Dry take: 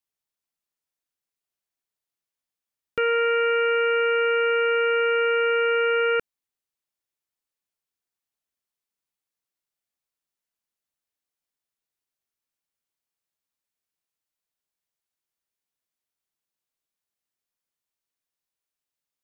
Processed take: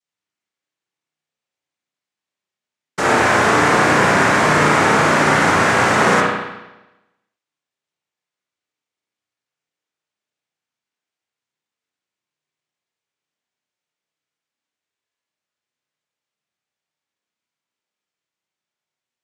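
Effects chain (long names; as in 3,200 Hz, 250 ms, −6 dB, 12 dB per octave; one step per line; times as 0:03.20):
hum removal 147.1 Hz, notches 39
cochlear-implant simulation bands 3
spring reverb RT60 1 s, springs 33/53 ms, chirp 40 ms, DRR −4 dB
level +2.5 dB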